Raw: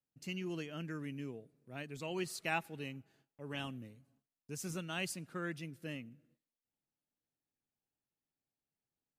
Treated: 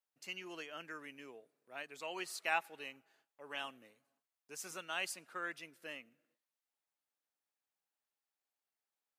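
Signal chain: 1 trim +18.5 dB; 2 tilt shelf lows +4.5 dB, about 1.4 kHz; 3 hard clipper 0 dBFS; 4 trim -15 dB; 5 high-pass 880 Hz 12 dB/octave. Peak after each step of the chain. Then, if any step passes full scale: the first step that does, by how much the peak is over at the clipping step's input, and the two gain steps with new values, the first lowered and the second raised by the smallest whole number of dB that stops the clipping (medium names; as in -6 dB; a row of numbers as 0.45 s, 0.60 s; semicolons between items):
-2.0 dBFS, -1.5 dBFS, -1.5 dBFS, -16.5 dBFS, -21.0 dBFS; nothing clips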